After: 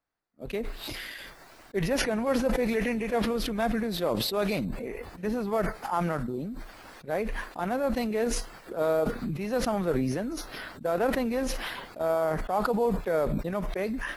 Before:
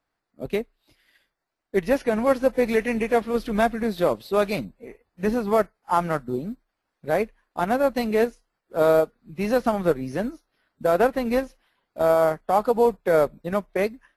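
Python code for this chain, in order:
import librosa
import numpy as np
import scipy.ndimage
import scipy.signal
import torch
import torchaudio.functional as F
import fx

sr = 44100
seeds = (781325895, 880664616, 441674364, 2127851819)

y = fx.sustainer(x, sr, db_per_s=21.0)
y = y * librosa.db_to_amplitude(-8.0)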